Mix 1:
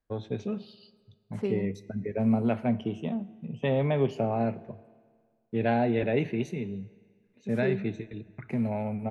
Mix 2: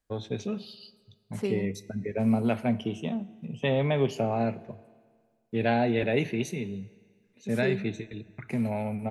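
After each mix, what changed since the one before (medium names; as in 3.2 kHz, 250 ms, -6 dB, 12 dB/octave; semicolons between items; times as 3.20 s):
master: remove low-pass 1.8 kHz 6 dB/octave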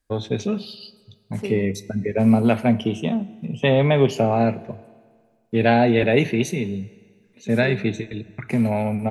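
first voice +8.5 dB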